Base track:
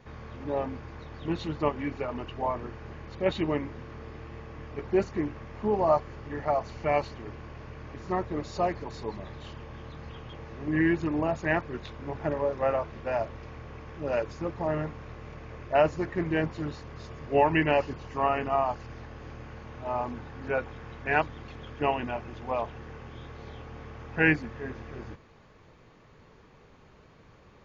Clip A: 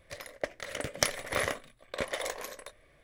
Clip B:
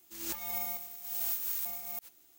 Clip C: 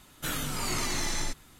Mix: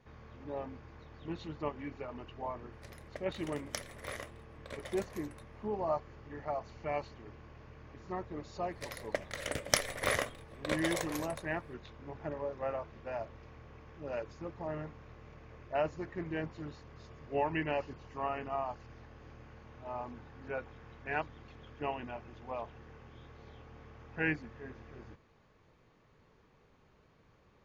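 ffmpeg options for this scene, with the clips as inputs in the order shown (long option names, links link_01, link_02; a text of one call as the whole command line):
ffmpeg -i bed.wav -i cue0.wav -filter_complex "[1:a]asplit=2[link_01][link_02];[0:a]volume=-10dB[link_03];[link_01]atrim=end=3.03,asetpts=PTS-STARTPTS,volume=-12.5dB,afade=type=in:duration=0.004:curve=hsin,afade=type=out:start_time=3.026:duration=0.004:curve=hsin,adelay=2720[link_04];[link_02]atrim=end=3.03,asetpts=PTS-STARTPTS,volume=-1dB,afade=type=in:duration=0.004:curve=hsin,afade=type=out:start_time=3.026:duration=0.004:curve=hsin,adelay=8710[link_05];[link_03][link_04][link_05]amix=inputs=3:normalize=0" out.wav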